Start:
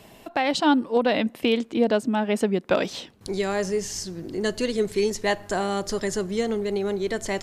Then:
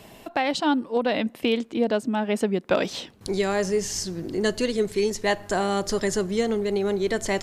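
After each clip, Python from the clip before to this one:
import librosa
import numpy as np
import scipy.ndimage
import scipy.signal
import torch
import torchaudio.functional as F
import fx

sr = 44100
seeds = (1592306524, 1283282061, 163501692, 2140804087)

y = fx.rider(x, sr, range_db=3, speed_s=0.5)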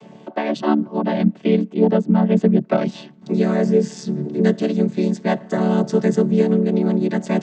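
y = fx.chord_vocoder(x, sr, chord='major triad', root=50)
y = y * 10.0 ** (7.5 / 20.0)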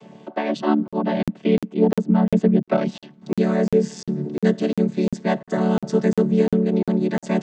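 y = fx.buffer_crackle(x, sr, first_s=0.88, period_s=0.35, block=2048, kind='zero')
y = y * 10.0 ** (-1.5 / 20.0)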